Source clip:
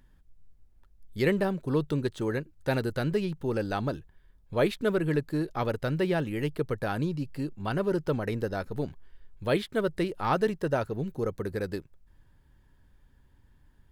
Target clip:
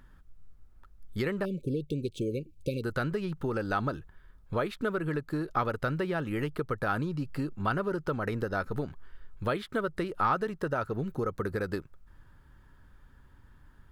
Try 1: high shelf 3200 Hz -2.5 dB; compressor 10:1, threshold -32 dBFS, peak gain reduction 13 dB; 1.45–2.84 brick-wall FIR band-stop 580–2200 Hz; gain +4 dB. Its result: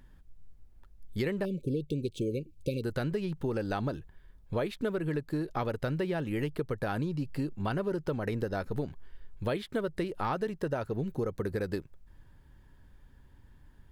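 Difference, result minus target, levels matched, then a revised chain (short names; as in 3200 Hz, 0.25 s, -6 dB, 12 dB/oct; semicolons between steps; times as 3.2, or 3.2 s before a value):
1000 Hz band -4.5 dB
high shelf 3200 Hz -2.5 dB; compressor 10:1, threshold -32 dBFS, peak gain reduction 13 dB; bell 1300 Hz +10.5 dB 0.56 oct; 1.45–2.84 brick-wall FIR band-stop 580–2200 Hz; gain +4 dB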